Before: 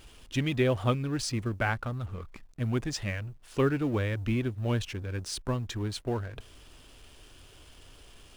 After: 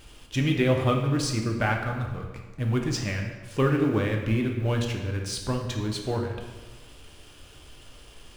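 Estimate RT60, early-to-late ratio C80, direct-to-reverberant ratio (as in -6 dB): 1.3 s, 7.0 dB, 1.5 dB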